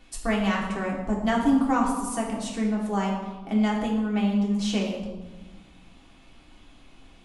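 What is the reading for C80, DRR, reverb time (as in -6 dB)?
5.5 dB, -3.0 dB, 1.3 s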